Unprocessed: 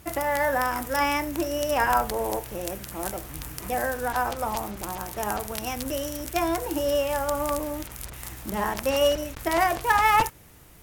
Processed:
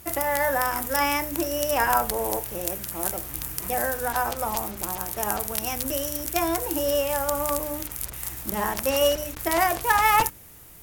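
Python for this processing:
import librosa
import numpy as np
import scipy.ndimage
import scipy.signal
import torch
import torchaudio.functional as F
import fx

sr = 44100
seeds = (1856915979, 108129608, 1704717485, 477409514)

y = fx.high_shelf(x, sr, hz=8000.0, db=10.5)
y = fx.hum_notches(y, sr, base_hz=50, count=6)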